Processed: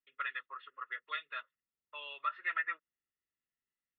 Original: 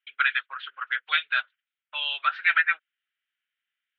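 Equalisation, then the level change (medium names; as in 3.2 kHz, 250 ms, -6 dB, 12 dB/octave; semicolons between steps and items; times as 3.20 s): boxcar filter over 57 samples; +7.0 dB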